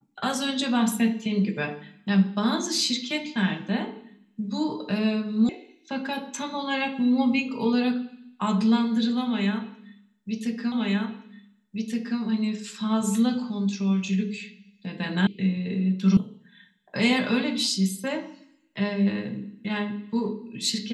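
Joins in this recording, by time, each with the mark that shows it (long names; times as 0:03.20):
0:05.49: cut off before it has died away
0:10.72: the same again, the last 1.47 s
0:15.27: cut off before it has died away
0:16.17: cut off before it has died away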